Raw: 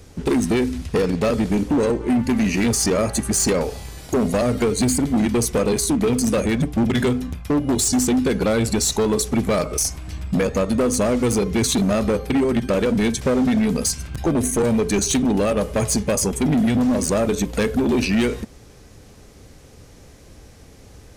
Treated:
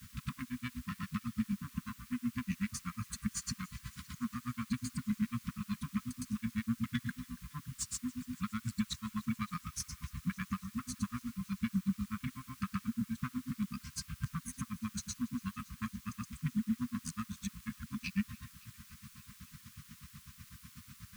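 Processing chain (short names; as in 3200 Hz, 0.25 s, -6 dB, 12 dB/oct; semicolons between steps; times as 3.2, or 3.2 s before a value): HPF 92 Hz 12 dB/oct; high shelf 3100 Hz -11.5 dB; compressor 2:1, threshold -36 dBFS, peak gain reduction 11.5 dB; grains 86 ms, grains 8.1/s; on a send: thin delay 0.282 s, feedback 82%, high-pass 1400 Hz, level -22.5 dB; on the sum: requantised 10-bit, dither triangular; brick-wall FIR band-stop 250–1000 Hz; gain +1.5 dB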